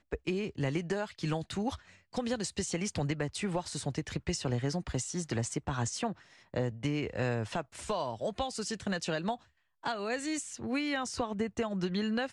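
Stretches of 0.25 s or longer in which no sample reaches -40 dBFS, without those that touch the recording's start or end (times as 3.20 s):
1.76–2.14 s
6.13–6.54 s
9.35–9.84 s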